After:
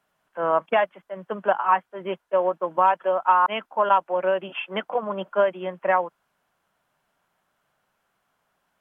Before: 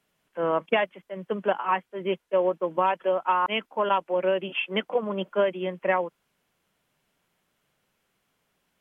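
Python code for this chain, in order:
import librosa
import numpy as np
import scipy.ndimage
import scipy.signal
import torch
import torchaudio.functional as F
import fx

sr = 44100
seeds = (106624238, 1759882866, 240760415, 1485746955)

y = fx.band_shelf(x, sr, hz=1000.0, db=8.5, octaves=1.7)
y = F.gain(torch.from_numpy(y), -3.0).numpy()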